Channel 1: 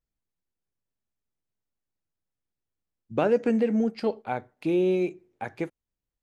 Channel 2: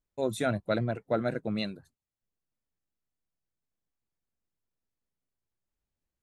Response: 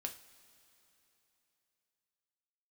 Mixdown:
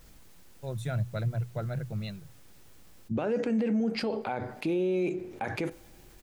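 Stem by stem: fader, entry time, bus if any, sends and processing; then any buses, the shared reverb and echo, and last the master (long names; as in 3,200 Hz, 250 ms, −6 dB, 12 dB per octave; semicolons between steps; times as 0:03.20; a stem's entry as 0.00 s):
+0.5 dB, 0.00 s, send −8 dB, brickwall limiter −20.5 dBFS, peak gain reduction 8.5 dB; envelope flattener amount 50%
−8.0 dB, 0.45 s, no send, low shelf with overshoot 190 Hz +10.5 dB, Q 3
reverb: on, pre-delay 3 ms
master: mains-hum notches 60/120 Hz; brickwall limiter −21.5 dBFS, peak gain reduction 8 dB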